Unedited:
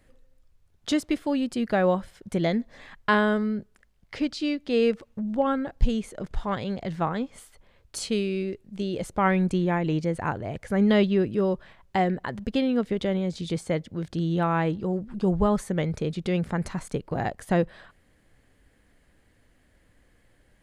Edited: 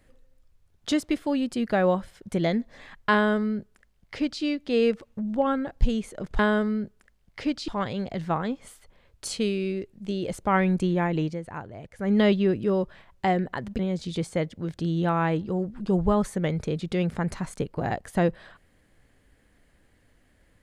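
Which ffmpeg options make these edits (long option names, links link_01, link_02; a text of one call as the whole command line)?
ffmpeg -i in.wav -filter_complex "[0:a]asplit=6[link_01][link_02][link_03][link_04][link_05][link_06];[link_01]atrim=end=6.392[link_07];[link_02]atrim=start=3.138:end=4.432[link_08];[link_03]atrim=start=6.388:end=10.11,asetpts=PTS-STARTPTS,afade=type=out:start_time=3.512:duration=0.21:silence=0.375837[link_09];[link_04]atrim=start=10.11:end=10.68,asetpts=PTS-STARTPTS,volume=-8.5dB[link_10];[link_05]atrim=start=10.68:end=12.502,asetpts=PTS-STARTPTS,afade=type=in:duration=0.21:silence=0.375837[link_11];[link_06]atrim=start=13.128[link_12];[link_07][link_08]acrossfade=duration=0.004:curve1=hsin:curve2=hsin[link_13];[link_09][link_10][link_11]concat=n=3:v=0:a=1[link_14];[link_13][link_14]acrossfade=duration=0.004:curve1=hsin:curve2=hsin[link_15];[link_15][link_12]acrossfade=duration=0.004:curve1=hsin:curve2=hsin" out.wav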